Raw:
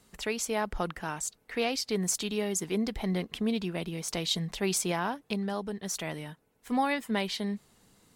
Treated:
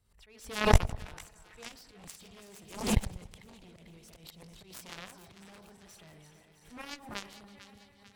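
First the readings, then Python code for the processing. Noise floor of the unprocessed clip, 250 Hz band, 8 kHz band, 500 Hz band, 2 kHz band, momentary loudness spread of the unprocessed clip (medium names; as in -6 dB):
-70 dBFS, -9.0 dB, -11.0 dB, -6.5 dB, -4.5 dB, 6 LU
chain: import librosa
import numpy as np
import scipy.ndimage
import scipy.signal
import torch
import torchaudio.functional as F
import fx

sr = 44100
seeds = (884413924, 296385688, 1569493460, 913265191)

p1 = fx.reverse_delay_fb(x, sr, ms=165, feedback_pct=72, wet_db=-9.0)
p2 = fx.notch(p1, sr, hz=6700.0, q=7.4)
p3 = fx.auto_swell(p2, sr, attack_ms=112.0)
p4 = fx.low_shelf_res(p3, sr, hz=140.0, db=13.0, q=1.5)
p5 = fx.cheby_harmonics(p4, sr, harmonics=(3,), levels_db=(-9,), full_scale_db=-11.0)
p6 = p5 + fx.echo_split(p5, sr, split_hz=1100.0, low_ms=95, high_ms=446, feedback_pct=52, wet_db=-13, dry=0)
p7 = fx.pre_swell(p6, sr, db_per_s=110.0)
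y = p7 * librosa.db_to_amplitude(6.5)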